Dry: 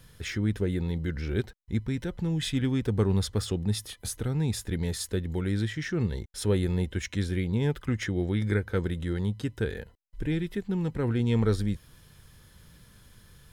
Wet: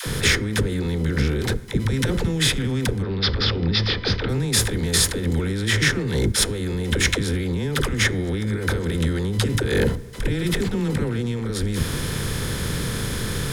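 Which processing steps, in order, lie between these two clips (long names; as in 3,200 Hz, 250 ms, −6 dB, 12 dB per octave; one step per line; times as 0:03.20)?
compressor on every frequency bin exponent 0.6
0:03.02–0:04.29: elliptic low-pass filter 5,000 Hz, stop band 40 dB
compressor whose output falls as the input rises −31 dBFS, ratio −1
all-pass dispersion lows, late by 65 ms, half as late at 450 Hz
convolution reverb RT60 1.5 s, pre-delay 4 ms, DRR 17 dB
level +9 dB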